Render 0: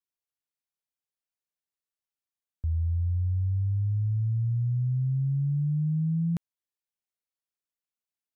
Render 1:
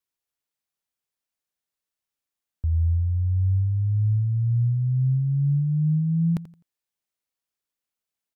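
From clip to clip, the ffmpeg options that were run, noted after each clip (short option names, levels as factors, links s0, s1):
-af "aecho=1:1:85|170|255:0.158|0.0444|0.0124,volume=1.68"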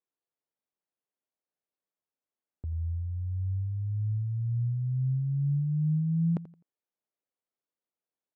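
-af "bandpass=f=440:t=q:w=0.77:csg=0,volume=1.19"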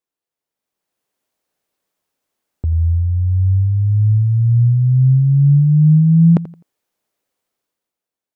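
-af "dynaudnorm=f=120:g=13:m=3.98,volume=1.78"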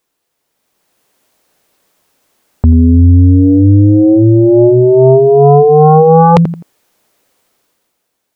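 -af "aeval=exprs='0.596*sin(PI/2*3.98*val(0)/0.596)':c=same,volume=1.33"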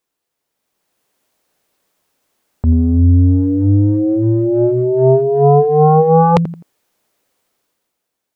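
-af "agate=range=0.398:threshold=0.562:ratio=16:detection=peak"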